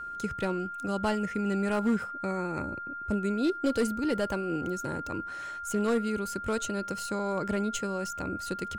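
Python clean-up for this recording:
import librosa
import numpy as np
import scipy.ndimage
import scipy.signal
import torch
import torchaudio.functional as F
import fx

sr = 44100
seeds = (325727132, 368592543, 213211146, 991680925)

y = fx.fix_declip(x, sr, threshold_db=-20.5)
y = fx.notch(y, sr, hz=1400.0, q=30.0)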